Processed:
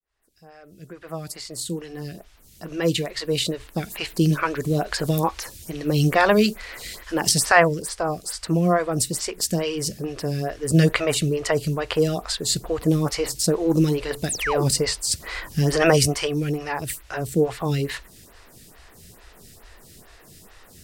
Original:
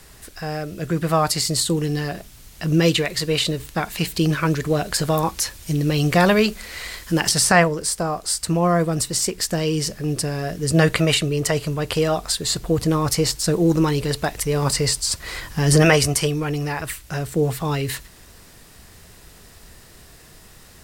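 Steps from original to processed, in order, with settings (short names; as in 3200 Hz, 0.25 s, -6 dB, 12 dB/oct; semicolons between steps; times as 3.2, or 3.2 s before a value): opening faded in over 4.38 s; painted sound fall, 14.29–14.64, 250–11000 Hz -26 dBFS; photocell phaser 2.3 Hz; gain +1.5 dB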